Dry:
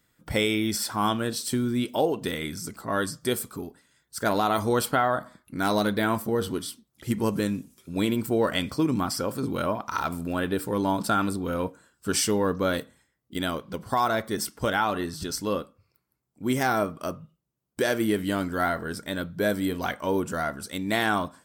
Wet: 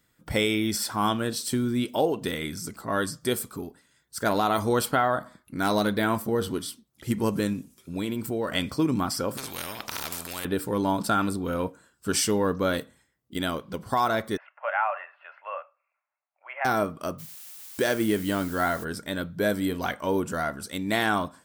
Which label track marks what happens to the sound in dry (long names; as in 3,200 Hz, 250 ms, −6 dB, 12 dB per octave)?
7.530000	8.540000	downward compressor 2 to 1, threshold −28 dBFS
9.370000	10.450000	every bin compressed towards the loudest bin 4 to 1
14.370000	16.650000	Chebyshev band-pass filter 580–2,700 Hz, order 5
17.180000	18.830000	background noise blue −44 dBFS